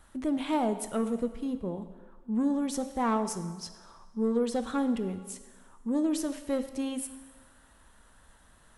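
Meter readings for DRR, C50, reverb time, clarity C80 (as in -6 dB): 9.5 dB, 11.5 dB, 1.4 s, 12.5 dB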